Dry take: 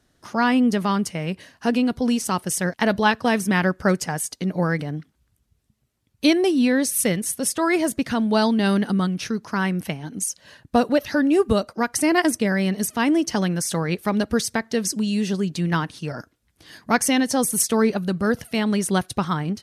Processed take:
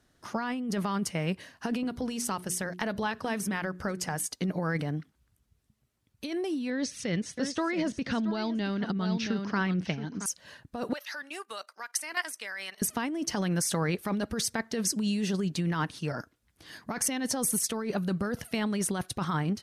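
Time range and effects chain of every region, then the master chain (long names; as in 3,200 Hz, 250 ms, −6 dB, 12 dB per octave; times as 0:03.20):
0:01.83–0:04.26: downward compressor, threshold −24 dBFS + mains-hum notches 60/120/180/240/300/360/420 Hz
0:06.70–0:10.26: low-pass filter 5,600 Hz 24 dB per octave + parametric band 930 Hz −4 dB 1.5 octaves + single-tap delay 674 ms −12 dB
0:10.93–0:12.82: high-pass filter 1,200 Hz + output level in coarse steps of 12 dB
whole clip: parametric band 1,300 Hz +2 dB 1.4 octaves; compressor whose output falls as the input rises −23 dBFS, ratio −1; level −6 dB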